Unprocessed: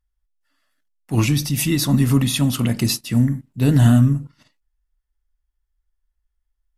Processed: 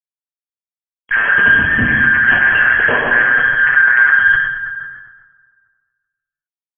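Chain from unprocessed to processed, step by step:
band-splitting scrambler in four parts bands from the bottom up 4123
0:01.47–0:02.04: drawn EQ curve 250 Hz 0 dB, 580 Hz −24 dB, 1,900 Hz −14 dB
repeating echo 138 ms, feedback 33%, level −16 dB
gate on every frequency bin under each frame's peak −20 dB strong
fuzz pedal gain 39 dB, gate −40 dBFS
linear-phase brick-wall low-pass 3,300 Hz
dense smooth reverb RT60 1.7 s, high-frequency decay 0.6×, DRR −1 dB
level that may fall only so fast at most 54 dB per second

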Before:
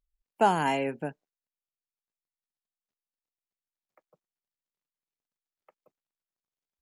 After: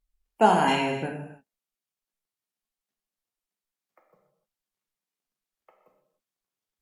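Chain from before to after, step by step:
0:00.68–0:01.09: graphic EQ with 15 bands 100 Hz +9 dB, 630 Hz −4 dB, 4,000 Hz +10 dB
reverb whose tail is shaped and stops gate 330 ms falling, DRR 1 dB
level +2 dB
Ogg Vorbis 96 kbit/s 44,100 Hz

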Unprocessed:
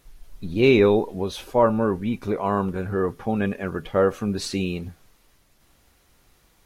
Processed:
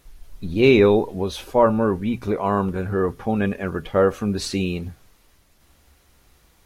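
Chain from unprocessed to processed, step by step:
parametric band 66 Hz +10 dB 0.4 octaves
mains-hum notches 60/120 Hz
level +2 dB

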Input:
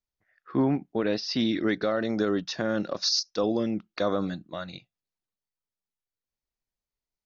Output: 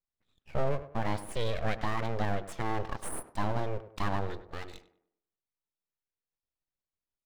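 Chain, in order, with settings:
low-pass filter 2,400 Hz 6 dB per octave
full-wave rectification
on a send: tape delay 100 ms, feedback 41%, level −11 dB, low-pass 1,600 Hz
on the sum: level −2.5 dB

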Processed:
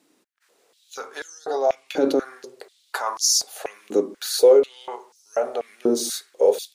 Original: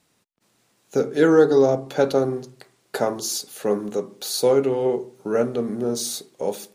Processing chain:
brickwall limiter −14.5 dBFS, peak gain reduction 10.5 dB
high-pass on a step sequencer 4.1 Hz 300–5,500 Hz

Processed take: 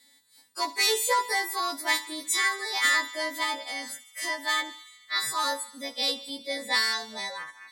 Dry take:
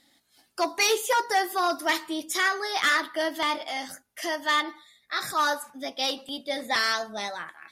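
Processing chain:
every partial snapped to a pitch grid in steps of 2 semitones
EQ curve with evenly spaced ripples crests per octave 1, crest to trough 9 dB
delay with a high-pass on its return 73 ms, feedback 74%, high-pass 2,300 Hz, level −15.5 dB
level −5 dB

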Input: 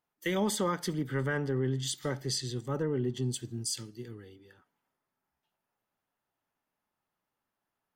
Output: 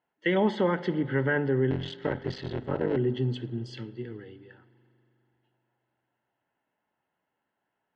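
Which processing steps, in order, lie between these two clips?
0:01.70–0:02.97: sub-harmonics by changed cycles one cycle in 3, muted
low-pass filter 3,100 Hz 24 dB per octave
mains-hum notches 50/100/150/200/250 Hz
notch comb filter 1,200 Hz
spring reverb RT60 3.2 s, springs 40 ms, chirp 30 ms, DRR 17 dB
level +6.5 dB

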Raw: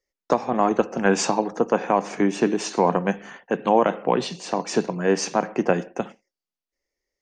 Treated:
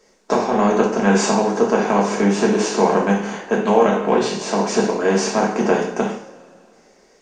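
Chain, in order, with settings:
compressor on every frequency bin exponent 0.6
coupled-rooms reverb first 0.46 s, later 2.6 s, from −22 dB, DRR −3 dB
level −4 dB

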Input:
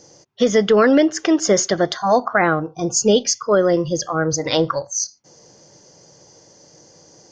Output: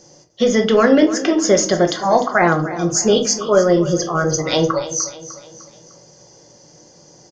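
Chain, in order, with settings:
repeating echo 301 ms, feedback 47%, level −14.5 dB
rectangular room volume 230 cubic metres, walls furnished, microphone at 1 metre

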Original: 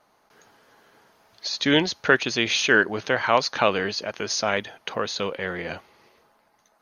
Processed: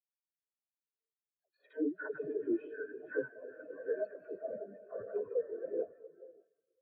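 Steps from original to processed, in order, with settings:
compressor on every frequency bin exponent 0.6
high-pass filter 180 Hz 6 dB per octave
downward expander −29 dBFS
low-pass filter 2,300 Hz 12 dB per octave
downward compressor 10 to 1, threshold −28 dBFS, peak gain reduction 17.5 dB
asymmetric clip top −30 dBFS
granular cloud, pitch spread up and down by 0 semitones
all-pass dispersion lows, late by 127 ms, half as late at 410 Hz
rotating-speaker cabinet horn 6 Hz, later 1 Hz, at 0:01.24
feedback delay with all-pass diffusion 552 ms, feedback 42%, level −6 dB
comb and all-pass reverb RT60 3 s, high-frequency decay 0.9×, pre-delay 115 ms, DRR 4 dB
every bin expanded away from the loudest bin 4 to 1
level +1 dB

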